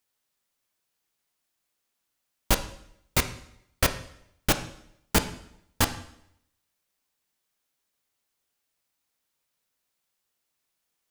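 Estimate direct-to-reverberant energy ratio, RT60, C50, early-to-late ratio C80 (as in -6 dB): 8.5 dB, 0.75 s, 12.0 dB, 15.0 dB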